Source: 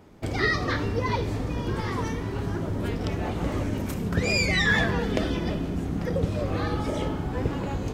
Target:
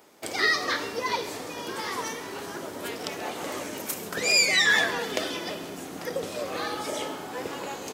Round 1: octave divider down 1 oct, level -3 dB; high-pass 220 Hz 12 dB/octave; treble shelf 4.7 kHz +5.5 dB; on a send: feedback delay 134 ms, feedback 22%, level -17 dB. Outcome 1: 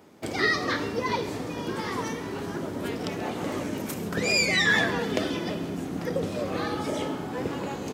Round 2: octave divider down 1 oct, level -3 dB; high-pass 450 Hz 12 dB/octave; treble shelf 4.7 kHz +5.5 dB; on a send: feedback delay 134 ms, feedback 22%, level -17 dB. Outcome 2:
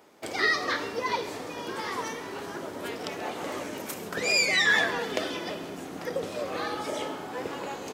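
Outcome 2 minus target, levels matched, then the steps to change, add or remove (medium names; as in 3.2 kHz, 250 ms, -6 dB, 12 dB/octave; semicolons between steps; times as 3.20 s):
8 kHz band -4.0 dB
change: treble shelf 4.7 kHz +13.5 dB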